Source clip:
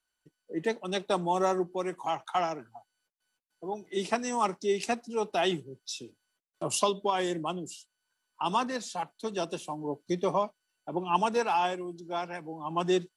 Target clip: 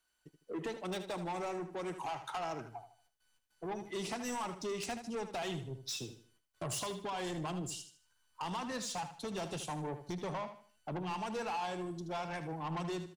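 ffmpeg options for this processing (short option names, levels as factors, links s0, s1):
-filter_complex "[0:a]asubboost=boost=5:cutoff=120,acompressor=threshold=0.0224:ratio=6,asoftclip=type=tanh:threshold=0.0133,asplit=2[s0][s1];[s1]aecho=0:1:77|154|231|308:0.299|0.102|0.0345|0.0117[s2];[s0][s2]amix=inputs=2:normalize=0,volume=1.41"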